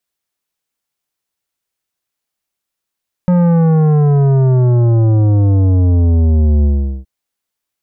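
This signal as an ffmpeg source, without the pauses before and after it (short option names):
-f lavfi -i "aevalsrc='0.355*clip((3.77-t)/0.41,0,1)*tanh(3.76*sin(2*PI*180*3.77/log(65/180)*(exp(log(65/180)*t/3.77)-1)))/tanh(3.76)':d=3.77:s=44100"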